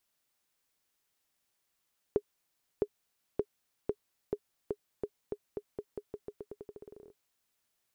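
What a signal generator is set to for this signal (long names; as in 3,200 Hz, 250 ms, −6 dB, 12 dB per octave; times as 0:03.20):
bouncing ball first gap 0.66 s, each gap 0.87, 414 Hz, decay 59 ms −16 dBFS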